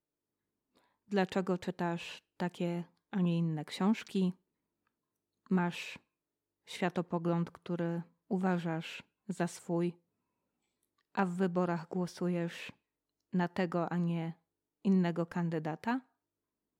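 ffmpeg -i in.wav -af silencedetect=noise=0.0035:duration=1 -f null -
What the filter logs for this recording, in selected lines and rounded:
silence_start: 0.00
silence_end: 1.11 | silence_duration: 1.11
silence_start: 4.32
silence_end: 5.46 | silence_duration: 1.14
silence_start: 9.91
silence_end: 11.15 | silence_duration: 1.24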